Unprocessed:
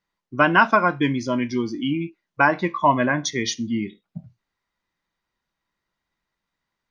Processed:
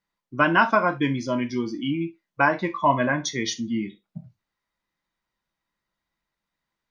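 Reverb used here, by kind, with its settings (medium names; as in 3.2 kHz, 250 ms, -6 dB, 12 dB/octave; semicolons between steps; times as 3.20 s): gated-style reverb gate 90 ms falling, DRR 8 dB; trim -3 dB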